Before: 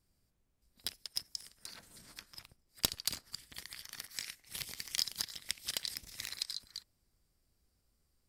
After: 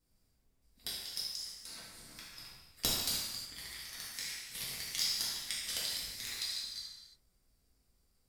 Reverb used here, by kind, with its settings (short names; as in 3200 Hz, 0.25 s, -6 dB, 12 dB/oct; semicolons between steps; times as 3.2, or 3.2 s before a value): non-linear reverb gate 0.39 s falling, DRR -7.5 dB; gain -5.5 dB